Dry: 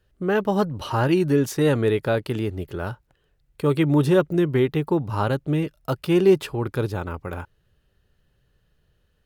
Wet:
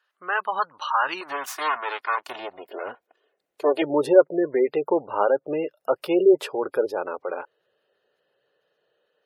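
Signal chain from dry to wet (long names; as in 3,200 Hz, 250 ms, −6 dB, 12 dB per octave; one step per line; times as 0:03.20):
0:01.21–0:03.82: lower of the sound and its delayed copy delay 2.8 ms
high-pass filter sweep 1,100 Hz → 510 Hz, 0:02.05–0:02.88
gate on every frequency bin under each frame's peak −25 dB strong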